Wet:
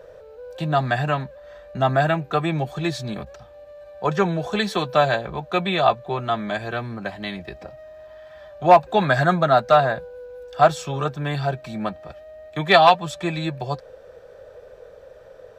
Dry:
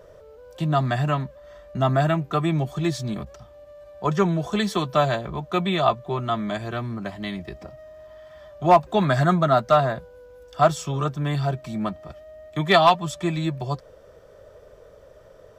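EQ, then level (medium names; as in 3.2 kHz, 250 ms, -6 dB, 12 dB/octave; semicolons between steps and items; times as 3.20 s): graphic EQ with 31 bands 500 Hz +10 dB, 800 Hz +8 dB, 1.6 kHz +9 dB, 2.5 kHz +7 dB, 4 kHz +7 dB; -2.0 dB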